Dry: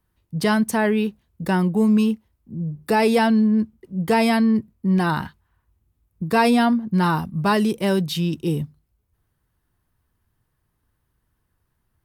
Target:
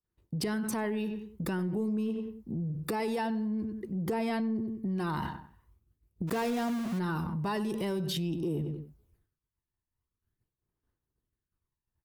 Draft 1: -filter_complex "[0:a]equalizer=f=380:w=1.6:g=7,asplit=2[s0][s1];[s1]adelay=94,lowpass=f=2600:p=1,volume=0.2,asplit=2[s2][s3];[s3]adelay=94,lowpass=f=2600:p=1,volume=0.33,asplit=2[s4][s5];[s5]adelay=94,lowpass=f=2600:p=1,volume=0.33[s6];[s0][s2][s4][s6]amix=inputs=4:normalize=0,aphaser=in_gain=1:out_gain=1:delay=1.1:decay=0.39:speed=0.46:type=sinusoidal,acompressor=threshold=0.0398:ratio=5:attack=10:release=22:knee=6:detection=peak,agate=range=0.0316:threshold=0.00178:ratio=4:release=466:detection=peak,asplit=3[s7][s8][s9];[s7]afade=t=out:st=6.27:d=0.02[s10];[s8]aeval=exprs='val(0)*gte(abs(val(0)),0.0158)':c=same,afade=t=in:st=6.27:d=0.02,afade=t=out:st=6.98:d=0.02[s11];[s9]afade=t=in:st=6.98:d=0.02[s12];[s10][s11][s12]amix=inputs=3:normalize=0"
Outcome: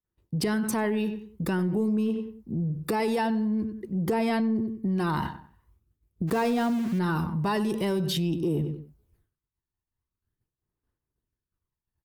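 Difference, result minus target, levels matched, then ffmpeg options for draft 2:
compression: peak gain reduction -5.5 dB
-filter_complex "[0:a]equalizer=f=380:w=1.6:g=7,asplit=2[s0][s1];[s1]adelay=94,lowpass=f=2600:p=1,volume=0.2,asplit=2[s2][s3];[s3]adelay=94,lowpass=f=2600:p=1,volume=0.33,asplit=2[s4][s5];[s5]adelay=94,lowpass=f=2600:p=1,volume=0.33[s6];[s0][s2][s4][s6]amix=inputs=4:normalize=0,aphaser=in_gain=1:out_gain=1:delay=1.1:decay=0.39:speed=0.46:type=sinusoidal,acompressor=threshold=0.0178:ratio=5:attack=10:release=22:knee=6:detection=peak,agate=range=0.0316:threshold=0.00178:ratio=4:release=466:detection=peak,asplit=3[s7][s8][s9];[s7]afade=t=out:st=6.27:d=0.02[s10];[s8]aeval=exprs='val(0)*gte(abs(val(0)),0.0158)':c=same,afade=t=in:st=6.27:d=0.02,afade=t=out:st=6.98:d=0.02[s11];[s9]afade=t=in:st=6.98:d=0.02[s12];[s10][s11][s12]amix=inputs=3:normalize=0"

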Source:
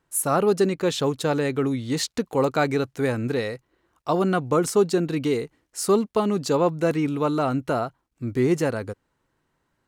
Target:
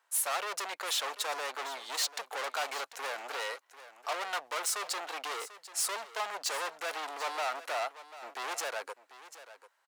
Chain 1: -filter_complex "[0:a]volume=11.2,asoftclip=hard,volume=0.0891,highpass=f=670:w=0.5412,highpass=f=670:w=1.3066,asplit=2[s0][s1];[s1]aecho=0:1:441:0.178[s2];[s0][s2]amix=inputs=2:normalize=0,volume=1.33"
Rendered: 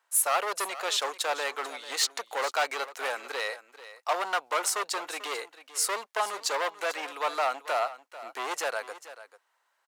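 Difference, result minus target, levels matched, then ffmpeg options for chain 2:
echo 301 ms early; overload inside the chain: distortion -5 dB
-filter_complex "[0:a]volume=31.6,asoftclip=hard,volume=0.0316,highpass=f=670:w=0.5412,highpass=f=670:w=1.3066,asplit=2[s0][s1];[s1]aecho=0:1:742:0.178[s2];[s0][s2]amix=inputs=2:normalize=0,volume=1.33"

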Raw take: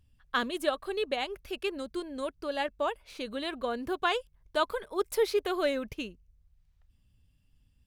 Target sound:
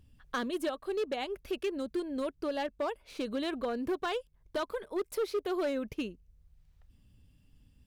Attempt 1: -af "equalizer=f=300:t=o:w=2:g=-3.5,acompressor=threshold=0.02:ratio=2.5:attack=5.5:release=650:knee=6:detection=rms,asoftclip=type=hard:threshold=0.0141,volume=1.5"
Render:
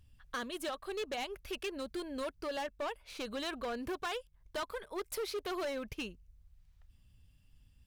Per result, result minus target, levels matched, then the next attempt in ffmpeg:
hard clipper: distortion +7 dB; 250 Hz band -3.0 dB
-af "equalizer=f=300:t=o:w=2:g=-3.5,acompressor=threshold=0.02:ratio=2.5:attack=5.5:release=650:knee=6:detection=rms,asoftclip=type=hard:threshold=0.0299,volume=1.5"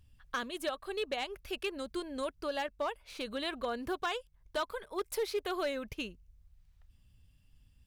250 Hz band -4.0 dB
-af "equalizer=f=300:t=o:w=2:g=6.5,acompressor=threshold=0.02:ratio=2.5:attack=5.5:release=650:knee=6:detection=rms,asoftclip=type=hard:threshold=0.0299,volume=1.5"

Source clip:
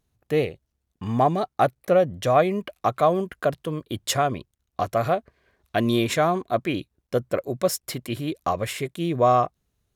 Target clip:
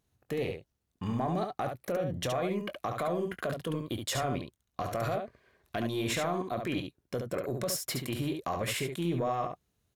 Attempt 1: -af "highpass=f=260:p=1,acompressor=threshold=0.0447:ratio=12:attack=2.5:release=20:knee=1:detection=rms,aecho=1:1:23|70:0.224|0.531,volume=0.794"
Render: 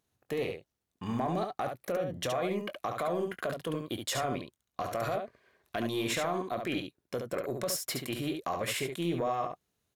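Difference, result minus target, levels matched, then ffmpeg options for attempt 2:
125 Hz band -4.0 dB
-af "highpass=f=67:p=1,acompressor=threshold=0.0447:ratio=12:attack=2.5:release=20:knee=1:detection=rms,aecho=1:1:23|70:0.224|0.531,volume=0.794"

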